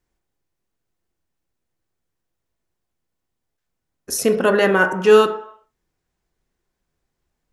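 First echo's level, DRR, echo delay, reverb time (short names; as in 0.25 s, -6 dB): none, 5.0 dB, none, 0.60 s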